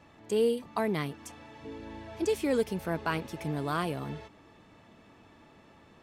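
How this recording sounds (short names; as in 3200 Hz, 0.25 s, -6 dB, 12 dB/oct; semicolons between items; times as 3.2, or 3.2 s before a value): noise floor -58 dBFS; spectral tilt -5.0 dB/oct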